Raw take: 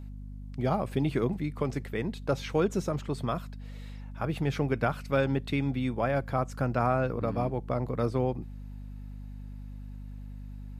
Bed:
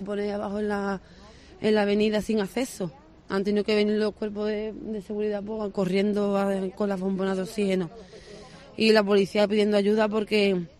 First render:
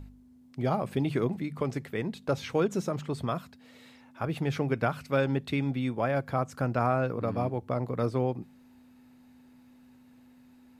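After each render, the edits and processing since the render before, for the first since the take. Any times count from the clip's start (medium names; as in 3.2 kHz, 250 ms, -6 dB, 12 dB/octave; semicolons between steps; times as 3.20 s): de-hum 50 Hz, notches 4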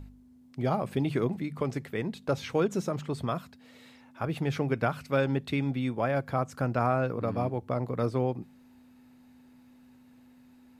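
no audible change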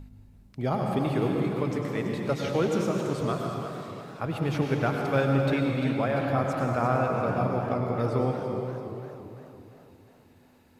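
plate-style reverb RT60 2.7 s, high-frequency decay 0.8×, pre-delay 85 ms, DRR 1 dB; modulated delay 339 ms, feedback 52%, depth 159 cents, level -11 dB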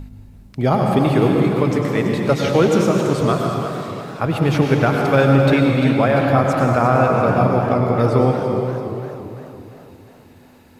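trim +11 dB; peak limiter -3 dBFS, peak gain reduction 3 dB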